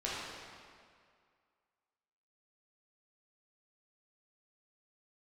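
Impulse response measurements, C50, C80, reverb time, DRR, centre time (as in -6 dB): -3.0 dB, -0.5 dB, 2.1 s, -8.0 dB, 0.133 s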